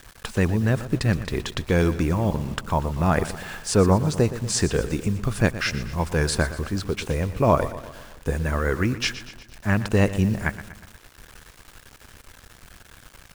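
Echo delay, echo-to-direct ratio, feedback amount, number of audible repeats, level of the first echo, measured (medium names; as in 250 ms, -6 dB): 120 ms, -12.5 dB, 54%, 4, -14.0 dB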